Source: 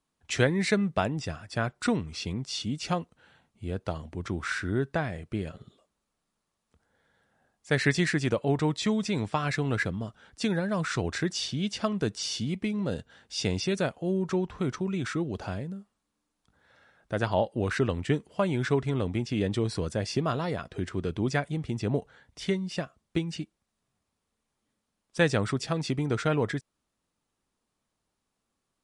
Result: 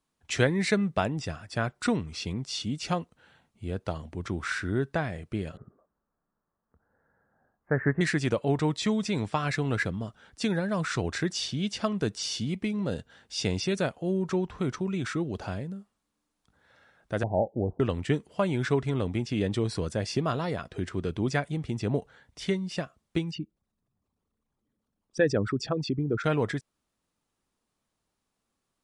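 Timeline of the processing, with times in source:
5.57–8.01 s: steep low-pass 1.7 kHz 48 dB/octave
17.23–17.80 s: steep low-pass 840 Hz 72 dB/octave
23.31–26.24 s: resonances exaggerated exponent 2

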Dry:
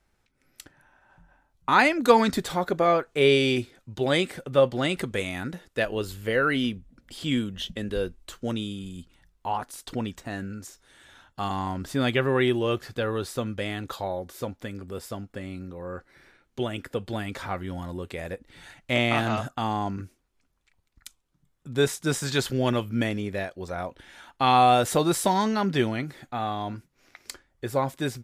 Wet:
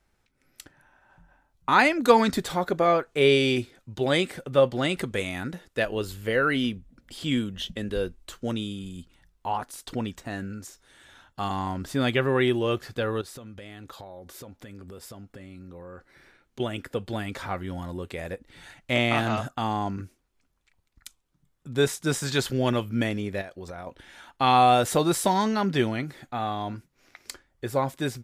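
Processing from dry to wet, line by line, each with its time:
13.21–16.60 s: compression 8:1, threshold -39 dBFS
23.41–23.87 s: compression 10:1, threshold -34 dBFS

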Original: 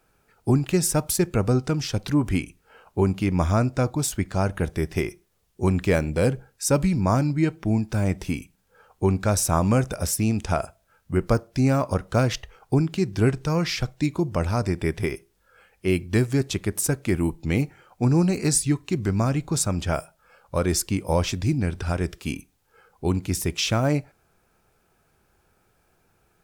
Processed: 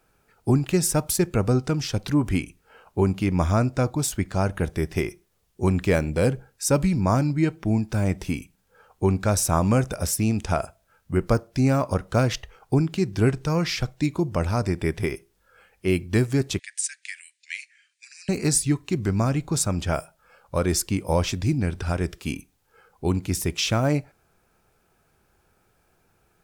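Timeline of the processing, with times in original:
16.59–18.29 s: Chebyshev band-pass 1.7–9.5 kHz, order 5

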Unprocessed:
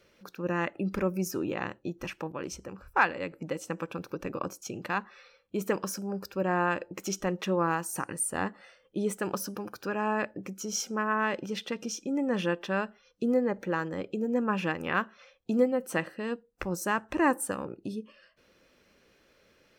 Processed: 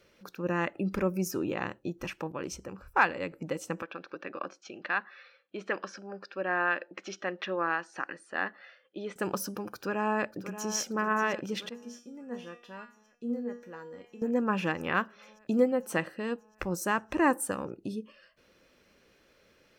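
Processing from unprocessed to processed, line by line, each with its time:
3.82–9.16 s: cabinet simulation 390–4400 Hz, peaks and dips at 450 Hz -6 dB, 930 Hz -6 dB, 1.7 kHz +6 dB
9.74–10.74 s: echo throw 580 ms, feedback 75%, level -12 dB
11.69–14.22 s: feedback comb 240 Hz, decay 0.4 s, mix 90%

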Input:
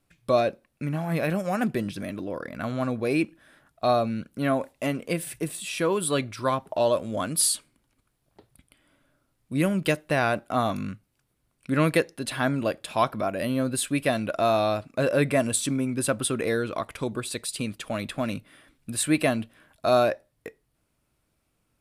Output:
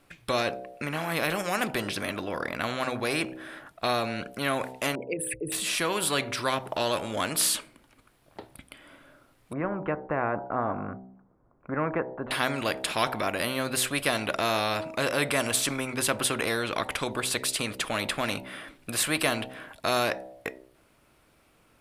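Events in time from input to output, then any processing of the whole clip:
4.95–5.52 s: resonances exaggerated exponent 3
9.53–12.31 s: inverse Chebyshev low-pass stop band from 5.1 kHz, stop band 70 dB
whole clip: tone controls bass -8 dB, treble -7 dB; de-hum 63.94 Hz, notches 15; spectrum-flattening compressor 2:1

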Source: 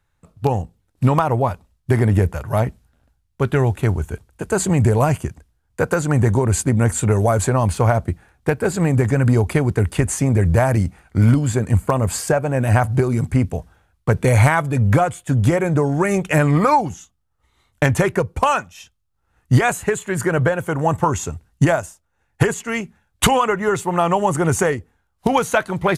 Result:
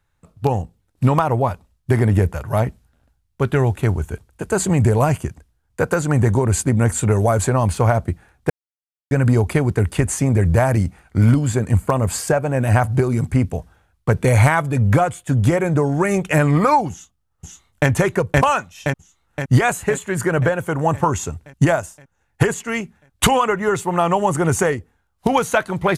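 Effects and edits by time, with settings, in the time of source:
8.50–9.11 s: mute
16.91–17.89 s: echo throw 520 ms, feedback 60%, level 0 dB

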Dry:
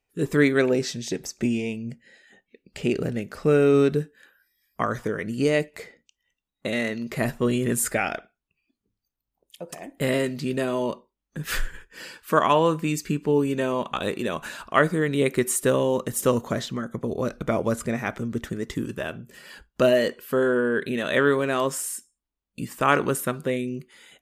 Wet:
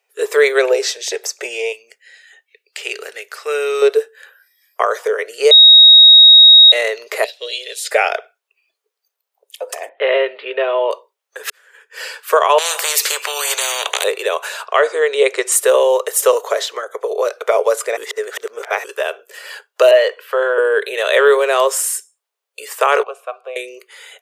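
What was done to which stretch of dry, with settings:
1.72–3.82 s: peaking EQ 540 Hz -14.5 dB 1.7 oct
5.51–6.72 s: bleep 3.78 kHz -10 dBFS
7.24–7.91 s: FFT filter 180 Hz 0 dB, 270 Hz -23 dB, 570 Hz -11 dB, 820 Hz -21 dB, 1.2 kHz -27 dB, 3.9 kHz +10 dB, 7.4 kHz -12 dB, 13 kHz -17 dB
9.89–10.91 s: steep low-pass 3.4 kHz 48 dB/octave
11.50–12.02 s: fade in quadratic
12.58–14.04 s: spectrum-flattening compressor 10:1
14.65–15.52 s: low-pass 7.9 kHz 24 dB/octave
17.97–18.84 s: reverse
19.91–20.58 s: three-band isolator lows -22 dB, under 420 Hz, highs -15 dB, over 4 kHz
23.03–23.56 s: vowel filter a
whole clip: Chebyshev high-pass 420 Hz, order 6; dynamic bell 1.6 kHz, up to -4 dB, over -39 dBFS, Q 1.5; loudness maximiser +13.5 dB; trim -1 dB

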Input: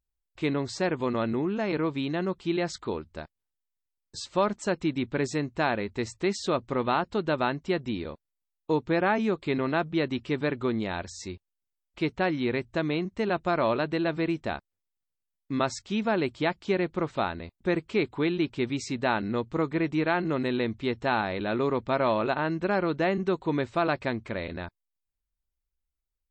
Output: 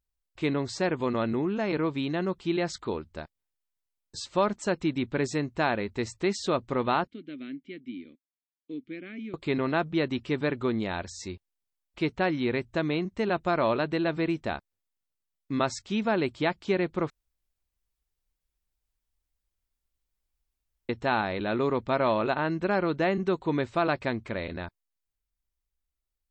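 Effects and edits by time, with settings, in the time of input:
7.07–9.34 s: vowel filter i
17.10–20.89 s: room tone

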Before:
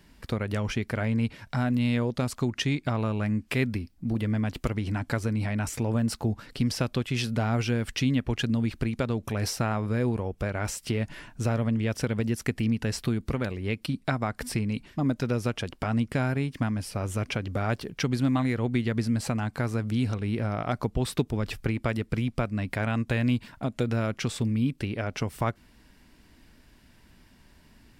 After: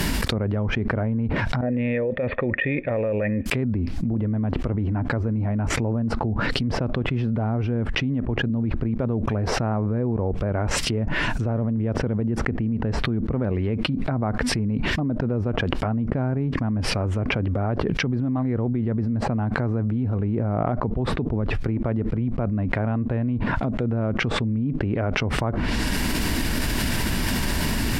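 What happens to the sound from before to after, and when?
1.61–3.46 s: cascade formant filter e
whole clip: low-pass that closes with the level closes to 870 Hz, closed at -25.5 dBFS; treble shelf 11 kHz +8.5 dB; level flattener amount 100%; trim -3 dB

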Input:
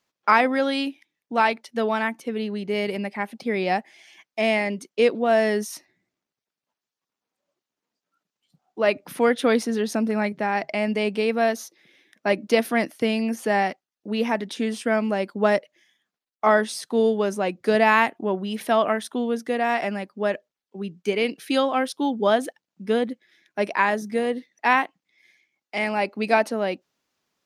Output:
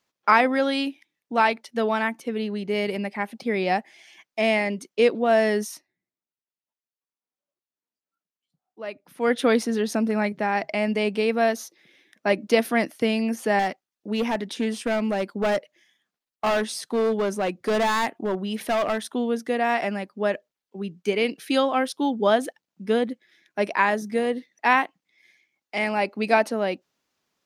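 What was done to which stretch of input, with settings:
5.68–9.32 s: dip -13.5 dB, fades 0.15 s
13.59–19.12 s: hard clipper -19 dBFS

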